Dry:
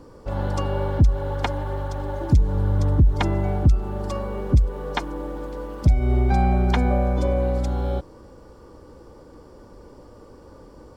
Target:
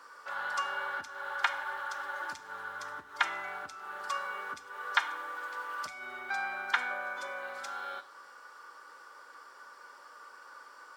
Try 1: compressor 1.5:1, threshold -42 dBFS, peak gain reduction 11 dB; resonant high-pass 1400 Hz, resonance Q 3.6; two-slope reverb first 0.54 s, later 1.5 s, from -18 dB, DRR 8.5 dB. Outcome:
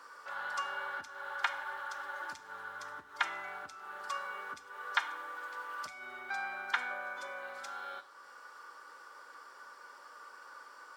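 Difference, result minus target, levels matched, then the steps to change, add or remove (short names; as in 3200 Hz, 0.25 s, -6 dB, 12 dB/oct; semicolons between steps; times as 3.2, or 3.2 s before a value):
compressor: peak gain reduction +3.5 dB
change: compressor 1.5:1, threshold -31.5 dBFS, peak gain reduction 7.5 dB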